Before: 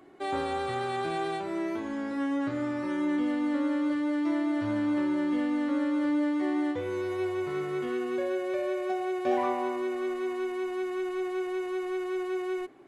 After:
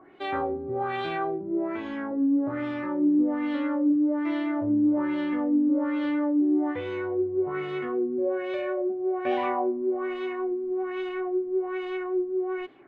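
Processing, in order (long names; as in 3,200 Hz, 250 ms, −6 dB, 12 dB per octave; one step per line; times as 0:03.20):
auto-filter low-pass sine 1.2 Hz 270–3,400 Hz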